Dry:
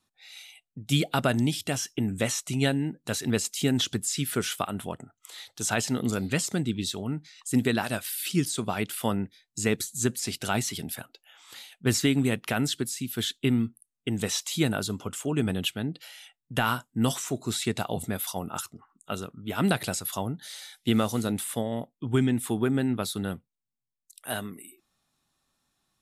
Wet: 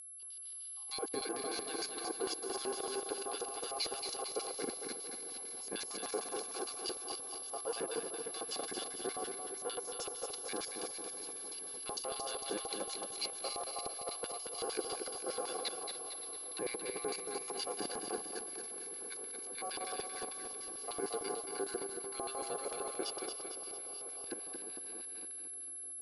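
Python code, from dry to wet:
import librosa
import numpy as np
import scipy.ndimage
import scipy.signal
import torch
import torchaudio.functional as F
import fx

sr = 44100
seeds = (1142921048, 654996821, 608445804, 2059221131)

y = fx.reverse_delay_fb(x, sr, ms=141, feedback_pct=84, wet_db=-7)
y = scipy.signal.sosfilt(scipy.signal.butter(4, 110.0, 'highpass', fs=sr, output='sos'), y)
y = fx.high_shelf(y, sr, hz=8400.0, db=-8.5)
y = y + 0.75 * np.pad(y, (int(1.6 * sr / 1000.0), 0))[:len(y)]
y = fx.level_steps(y, sr, step_db=14)
y = y * np.sin(2.0 * np.pi * 940.0 * np.arange(len(y)) / sr)
y = fx.filter_lfo_bandpass(y, sr, shape='square', hz=6.6, low_hz=430.0, high_hz=4600.0, q=3.3)
y = y + 10.0 ** (-38.0 / 20.0) * np.sin(2.0 * np.pi * 11000.0 * np.arange(len(y)) / sr)
y = fx.air_absorb(y, sr, metres=70.0)
y = fx.echo_feedback(y, sr, ms=226, feedback_pct=52, wet_db=-6.0)
y = y * librosa.db_to_amplitude(3.5)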